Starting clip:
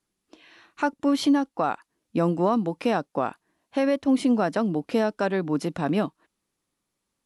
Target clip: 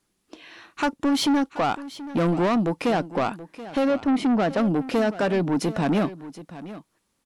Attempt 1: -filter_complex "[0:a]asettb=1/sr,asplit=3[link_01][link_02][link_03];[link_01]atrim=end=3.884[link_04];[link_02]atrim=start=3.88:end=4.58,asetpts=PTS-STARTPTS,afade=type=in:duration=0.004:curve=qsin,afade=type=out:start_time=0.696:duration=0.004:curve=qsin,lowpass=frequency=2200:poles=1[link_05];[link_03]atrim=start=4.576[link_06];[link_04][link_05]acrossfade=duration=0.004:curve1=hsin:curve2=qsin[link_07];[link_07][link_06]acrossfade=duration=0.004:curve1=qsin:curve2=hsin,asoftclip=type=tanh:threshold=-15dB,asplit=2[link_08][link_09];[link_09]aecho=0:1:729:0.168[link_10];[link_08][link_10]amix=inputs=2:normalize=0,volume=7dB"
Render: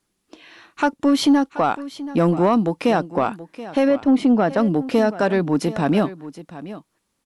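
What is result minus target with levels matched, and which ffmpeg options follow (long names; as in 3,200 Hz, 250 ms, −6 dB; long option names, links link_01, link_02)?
soft clipping: distortion −11 dB
-filter_complex "[0:a]asettb=1/sr,asplit=3[link_01][link_02][link_03];[link_01]atrim=end=3.884[link_04];[link_02]atrim=start=3.88:end=4.58,asetpts=PTS-STARTPTS,afade=type=in:duration=0.004:curve=qsin,afade=type=out:start_time=0.696:duration=0.004:curve=qsin,lowpass=frequency=2200:poles=1[link_05];[link_03]atrim=start=4.576[link_06];[link_04][link_05]acrossfade=duration=0.004:curve1=hsin:curve2=qsin[link_07];[link_07][link_06]acrossfade=duration=0.004:curve1=qsin:curve2=hsin,asoftclip=type=tanh:threshold=-24.5dB,asplit=2[link_08][link_09];[link_09]aecho=0:1:729:0.168[link_10];[link_08][link_10]amix=inputs=2:normalize=0,volume=7dB"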